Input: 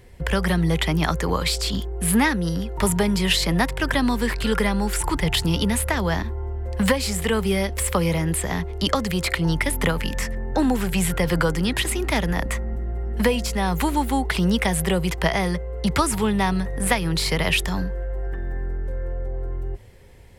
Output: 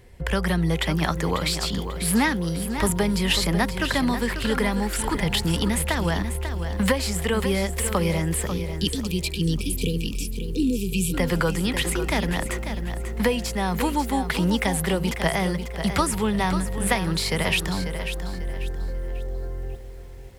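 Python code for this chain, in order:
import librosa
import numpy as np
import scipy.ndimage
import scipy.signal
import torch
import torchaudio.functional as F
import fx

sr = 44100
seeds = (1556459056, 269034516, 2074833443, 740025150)

y = fx.spec_erase(x, sr, start_s=8.47, length_s=2.67, low_hz=510.0, high_hz=2300.0)
y = fx.echo_crushed(y, sr, ms=543, feedback_pct=35, bits=8, wet_db=-9.0)
y = F.gain(torch.from_numpy(y), -2.0).numpy()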